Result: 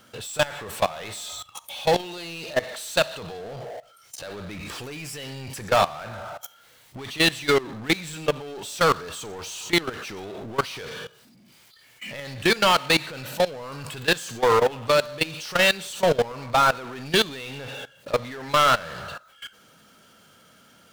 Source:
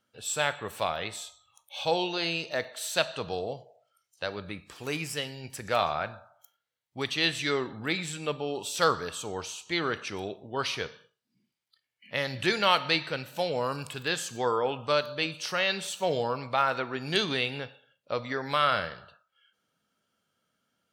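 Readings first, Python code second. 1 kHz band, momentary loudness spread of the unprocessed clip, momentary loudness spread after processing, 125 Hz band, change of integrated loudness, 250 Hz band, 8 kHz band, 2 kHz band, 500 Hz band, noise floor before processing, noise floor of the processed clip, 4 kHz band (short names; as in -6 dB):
+5.5 dB, 11 LU, 18 LU, +5.0 dB, +5.5 dB, +5.0 dB, +4.5 dB, +5.0 dB, +6.0 dB, -83 dBFS, -55 dBFS, +4.5 dB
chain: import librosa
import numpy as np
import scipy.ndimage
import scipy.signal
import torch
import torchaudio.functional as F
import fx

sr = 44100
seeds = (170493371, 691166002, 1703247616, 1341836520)

y = fx.power_curve(x, sr, exponent=0.5)
y = fx.level_steps(y, sr, step_db=19)
y = y * 10.0 ** (2.0 / 20.0)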